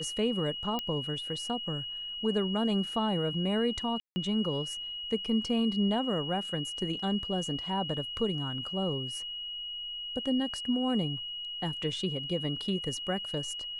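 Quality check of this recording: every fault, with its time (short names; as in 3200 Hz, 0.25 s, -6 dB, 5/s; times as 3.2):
tone 2900 Hz -36 dBFS
0.79 pop -18 dBFS
4–4.16 gap 0.16 s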